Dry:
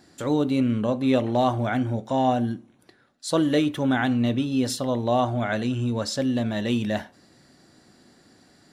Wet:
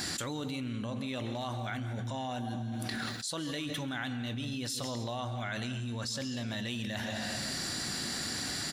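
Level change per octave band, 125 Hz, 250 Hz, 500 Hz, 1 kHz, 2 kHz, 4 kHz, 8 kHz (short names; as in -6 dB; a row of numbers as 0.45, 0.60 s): -8.5, -13.5, -15.5, -12.5, -5.0, -0.5, +1.0 dB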